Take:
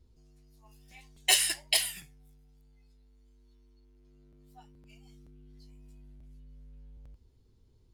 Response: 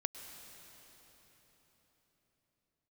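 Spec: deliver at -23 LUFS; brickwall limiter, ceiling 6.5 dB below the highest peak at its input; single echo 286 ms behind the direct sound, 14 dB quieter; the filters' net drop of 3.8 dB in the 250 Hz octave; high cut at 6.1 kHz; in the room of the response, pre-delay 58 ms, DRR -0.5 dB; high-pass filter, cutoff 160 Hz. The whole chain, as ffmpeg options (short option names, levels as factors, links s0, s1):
-filter_complex "[0:a]highpass=160,lowpass=6100,equalizer=f=250:t=o:g=-4.5,alimiter=limit=0.133:level=0:latency=1,aecho=1:1:286:0.2,asplit=2[s0][s1];[1:a]atrim=start_sample=2205,adelay=58[s2];[s1][s2]afir=irnorm=-1:irlink=0,volume=1.06[s3];[s0][s3]amix=inputs=2:normalize=0,volume=2.24"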